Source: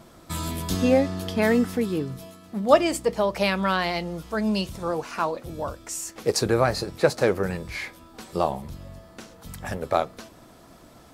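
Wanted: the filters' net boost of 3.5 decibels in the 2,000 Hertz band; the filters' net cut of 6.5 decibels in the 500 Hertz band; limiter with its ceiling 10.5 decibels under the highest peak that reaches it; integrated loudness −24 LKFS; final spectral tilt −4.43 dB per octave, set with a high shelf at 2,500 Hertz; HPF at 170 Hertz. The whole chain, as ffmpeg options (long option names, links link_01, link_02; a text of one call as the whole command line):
ffmpeg -i in.wav -af "highpass=170,equalizer=frequency=500:width_type=o:gain=-8,equalizer=frequency=2000:width_type=o:gain=7.5,highshelf=frequency=2500:gain=-6,volume=7dB,alimiter=limit=-10dB:level=0:latency=1" out.wav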